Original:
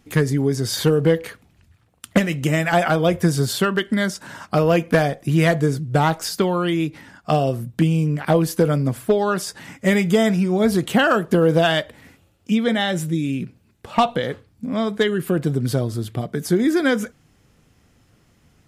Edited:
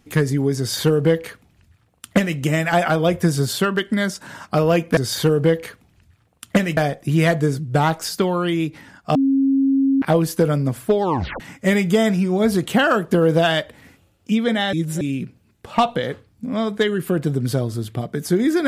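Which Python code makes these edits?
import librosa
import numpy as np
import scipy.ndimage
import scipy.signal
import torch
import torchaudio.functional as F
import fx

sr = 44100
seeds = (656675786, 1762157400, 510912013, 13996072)

y = fx.edit(x, sr, fx.duplicate(start_s=0.58, length_s=1.8, to_s=4.97),
    fx.bleep(start_s=7.35, length_s=0.87, hz=271.0, db=-13.5),
    fx.tape_stop(start_s=9.23, length_s=0.37),
    fx.reverse_span(start_s=12.93, length_s=0.28), tone=tone)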